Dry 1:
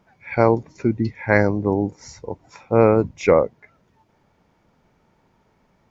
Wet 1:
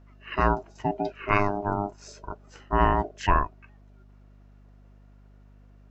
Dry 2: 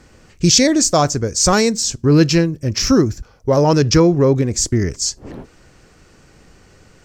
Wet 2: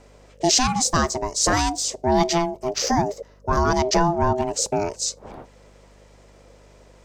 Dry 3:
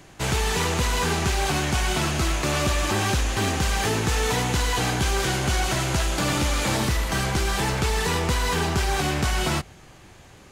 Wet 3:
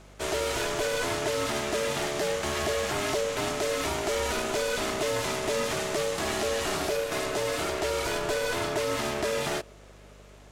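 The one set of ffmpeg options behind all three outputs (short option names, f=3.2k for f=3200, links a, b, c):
-af "equalizer=f=310:t=o:w=0.99:g=-3.5,aeval=exprs='val(0)*sin(2*PI*510*n/s)':c=same,aeval=exprs='val(0)+0.00355*(sin(2*PI*50*n/s)+sin(2*PI*2*50*n/s)/2+sin(2*PI*3*50*n/s)/3+sin(2*PI*4*50*n/s)/4+sin(2*PI*5*50*n/s)/5)':c=same,volume=-2.5dB"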